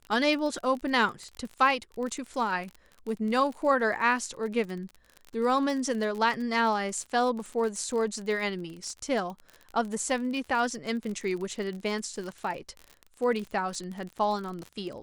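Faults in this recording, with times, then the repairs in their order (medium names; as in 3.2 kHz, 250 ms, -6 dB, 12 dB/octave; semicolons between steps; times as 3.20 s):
crackle 37 per s -34 dBFS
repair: de-click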